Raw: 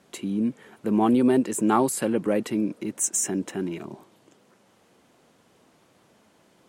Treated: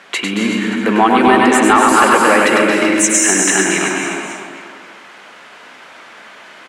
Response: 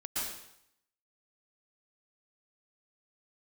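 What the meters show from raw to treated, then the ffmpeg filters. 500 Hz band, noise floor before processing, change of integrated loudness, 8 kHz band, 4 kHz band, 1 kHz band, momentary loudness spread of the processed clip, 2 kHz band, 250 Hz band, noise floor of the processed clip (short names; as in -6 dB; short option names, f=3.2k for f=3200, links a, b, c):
+11.5 dB, -61 dBFS, +12.5 dB, +14.0 dB, +22.0 dB, +17.5 dB, 11 LU, +26.5 dB, +8.5 dB, -39 dBFS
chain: -filter_complex "[0:a]bandpass=f=1.9k:t=q:w=1.3:csg=0,asplit=2[a][b];[b]aecho=0:1:100|225|381.2|576.6|820.7:0.631|0.398|0.251|0.158|0.1[c];[a][c]amix=inputs=2:normalize=0,acompressor=threshold=-35dB:ratio=2.5,asplit=2[d][e];[1:a]atrim=start_sample=2205,adelay=135[f];[e][f]afir=irnorm=-1:irlink=0,volume=-6.5dB[g];[d][g]amix=inputs=2:normalize=0,apsyclip=27.5dB,volume=-1.5dB"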